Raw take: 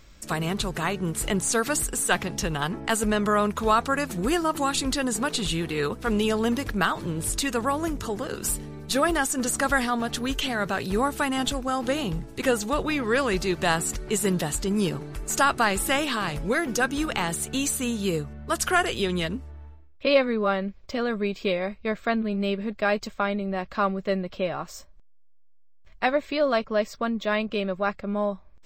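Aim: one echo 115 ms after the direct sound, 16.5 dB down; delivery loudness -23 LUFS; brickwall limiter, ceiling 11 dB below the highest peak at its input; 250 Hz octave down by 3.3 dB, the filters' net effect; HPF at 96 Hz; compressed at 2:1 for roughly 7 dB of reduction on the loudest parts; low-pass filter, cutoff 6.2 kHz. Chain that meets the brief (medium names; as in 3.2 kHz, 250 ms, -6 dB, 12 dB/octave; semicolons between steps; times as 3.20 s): high-pass 96 Hz; low-pass 6.2 kHz; peaking EQ 250 Hz -4 dB; compression 2:1, threshold -28 dBFS; peak limiter -22.5 dBFS; delay 115 ms -16.5 dB; trim +10 dB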